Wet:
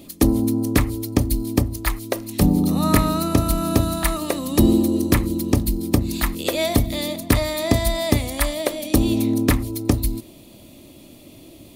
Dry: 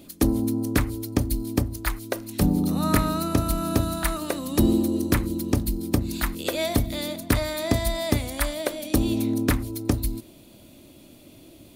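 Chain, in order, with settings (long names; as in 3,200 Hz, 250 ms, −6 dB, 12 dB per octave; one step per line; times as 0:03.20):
notch filter 1,500 Hz, Q 6.3
level +4.5 dB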